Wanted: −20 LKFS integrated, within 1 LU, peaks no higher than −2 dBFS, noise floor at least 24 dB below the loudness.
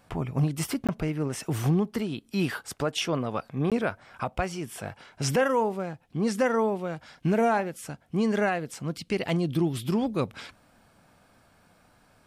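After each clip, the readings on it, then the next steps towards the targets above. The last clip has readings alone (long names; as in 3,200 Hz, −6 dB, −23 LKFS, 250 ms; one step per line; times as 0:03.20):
number of dropouts 2; longest dropout 17 ms; integrated loudness −28.5 LKFS; sample peak −13.5 dBFS; target loudness −20.0 LKFS
→ repair the gap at 0:00.87/0:03.70, 17 ms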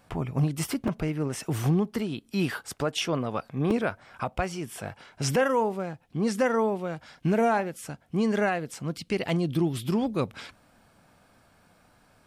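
number of dropouts 0; integrated loudness −28.5 LKFS; sample peak −11.5 dBFS; target loudness −20.0 LKFS
→ level +8.5 dB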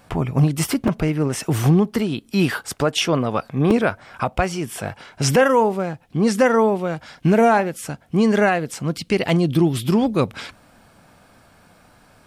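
integrated loudness −20.0 LKFS; sample peak −3.0 dBFS; background noise floor −53 dBFS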